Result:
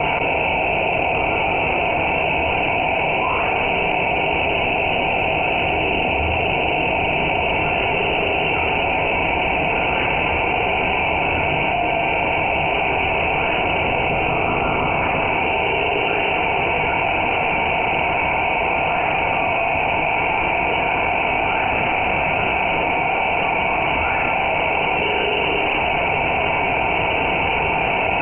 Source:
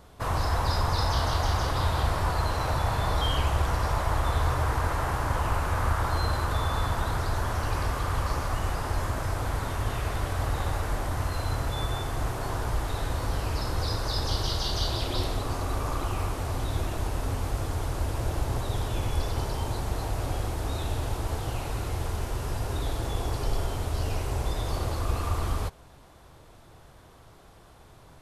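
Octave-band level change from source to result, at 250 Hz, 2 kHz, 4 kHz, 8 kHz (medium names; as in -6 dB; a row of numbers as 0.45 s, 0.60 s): +10.5 dB, +20.0 dB, +9.5 dB, under -35 dB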